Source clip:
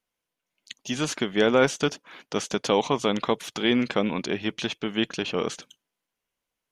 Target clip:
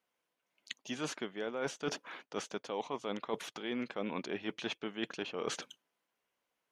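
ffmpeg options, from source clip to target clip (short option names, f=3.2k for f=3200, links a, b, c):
-af "highpass=f=420:p=1,highshelf=f=2.7k:g=-10,areverse,acompressor=threshold=-39dB:ratio=10,areverse,volume=5dB"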